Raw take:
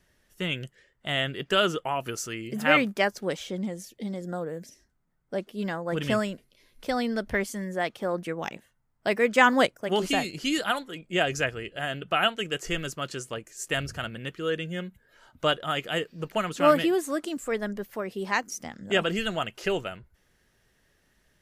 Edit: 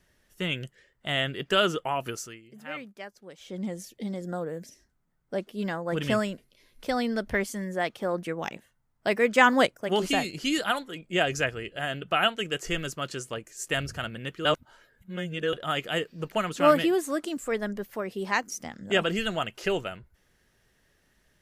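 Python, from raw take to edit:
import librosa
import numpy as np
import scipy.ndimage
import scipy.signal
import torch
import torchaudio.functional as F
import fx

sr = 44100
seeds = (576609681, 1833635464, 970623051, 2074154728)

y = fx.edit(x, sr, fx.fade_down_up(start_s=2.07, length_s=1.63, db=-17.0, fade_s=0.34),
    fx.reverse_span(start_s=14.45, length_s=1.08), tone=tone)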